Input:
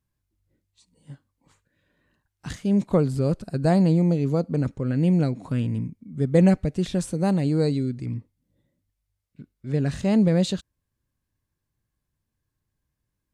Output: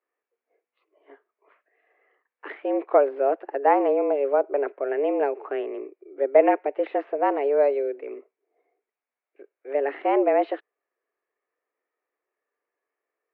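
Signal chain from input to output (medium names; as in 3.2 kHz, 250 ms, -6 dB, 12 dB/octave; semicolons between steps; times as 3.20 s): vibrato 0.61 Hz 47 cents; mistuned SSB +140 Hz 280–2300 Hz; trim +5 dB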